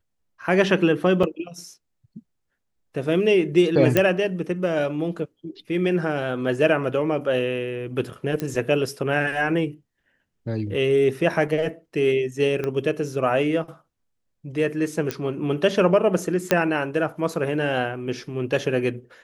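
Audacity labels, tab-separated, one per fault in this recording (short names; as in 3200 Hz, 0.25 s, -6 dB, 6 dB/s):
1.230000	1.230000	gap 4.7 ms
3.970000	3.970000	pop -4 dBFS
8.400000	8.400000	pop -13 dBFS
12.640000	12.640000	pop -15 dBFS
15.110000	15.110000	pop -10 dBFS
16.510000	16.510000	pop -3 dBFS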